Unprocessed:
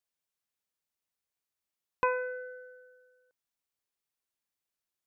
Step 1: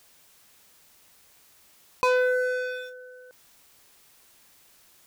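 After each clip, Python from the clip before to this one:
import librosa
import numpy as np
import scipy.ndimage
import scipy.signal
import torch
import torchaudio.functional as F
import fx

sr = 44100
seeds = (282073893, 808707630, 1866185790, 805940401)

y = fx.leveller(x, sr, passes=3)
y = fx.env_flatten(y, sr, amount_pct=50)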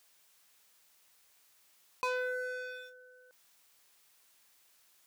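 y = fx.low_shelf(x, sr, hz=470.0, db=-10.5)
y = y * librosa.db_to_amplitude(-8.5)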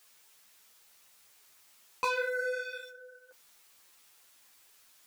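y = x + 10.0 ** (-21.5 / 20.0) * np.pad(x, (int(91 * sr / 1000.0), 0))[:len(x)]
y = fx.ensemble(y, sr)
y = y * librosa.db_to_amplitude(8.0)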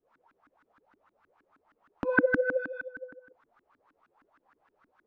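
y = fx.filter_lfo_lowpass(x, sr, shape='saw_up', hz=6.4, low_hz=260.0, high_hz=1600.0, q=6.5)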